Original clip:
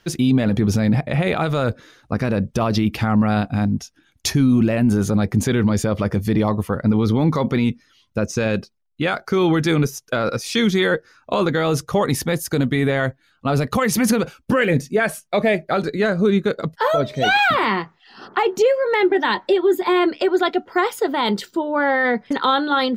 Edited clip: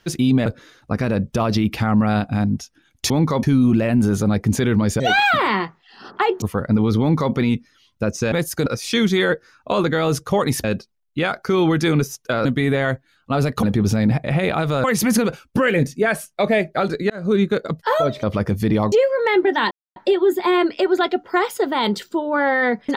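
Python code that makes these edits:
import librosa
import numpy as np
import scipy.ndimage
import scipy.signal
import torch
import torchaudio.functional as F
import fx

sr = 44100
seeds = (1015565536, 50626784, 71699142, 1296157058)

y = fx.edit(x, sr, fx.move(start_s=0.46, length_s=1.21, to_s=13.78),
    fx.swap(start_s=5.88, length_s=0.69, other_s=17.17, other_length_s=1.42),
    fx.duplicate(start_s=7.15, length_s=0.33, to_s=4.31),
    fx.swap(start_s=8.47, length_s=1.81, other_s=12.26, other_length_s=0.34),
    fx.fade_in_span(start_s=16.04, length_s=0.25),
    fx.insert_silence(at_s=19.38, length_s=0.25), tone=tone)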